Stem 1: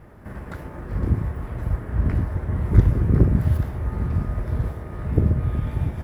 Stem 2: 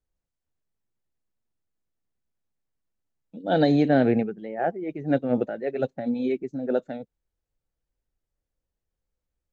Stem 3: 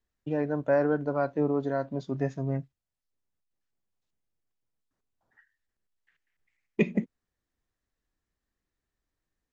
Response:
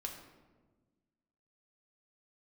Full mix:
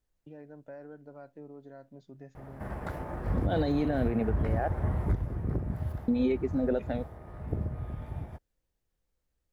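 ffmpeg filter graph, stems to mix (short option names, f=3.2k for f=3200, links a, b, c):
-filter_complex "[0:a]equalizer=f=730:w=1.6:g=8,adelay=2350,volume=-3.5dB,afade=t=out:st=4.83:d=0.44:silence=0.298538[a];[1:a]alimiter=limit=-19.5dB:level=0:latency=1,volume=2.5dB,asplit=3[b][c][d];[b]atrim=end=4.68,asetpts=PTS-STARTPTS,afade=t=out:st=4.676:d=0.004:c=hsin[e];[c]atrim=start=4.68:end=6.08,asetpts=PTS-STARTPTS,volume=0[f];[d]atrim=start=6.08,asetpts=PTS-STARTPTS,afade=t=in:d=0.004:c=hsin[g];[e][f][g]concat=n=3:v=0:a=1[h];[2:a]acompressor=threshold=-45dB:ratio=2,equalizer=f=1.1k:t=o:w=0.34:g=-7,volume=-8.5dB[i];[a][h][i]amix=inputs=3:normalize=0,alimiter=limit=-19dB:level=0:latency=1:release=171"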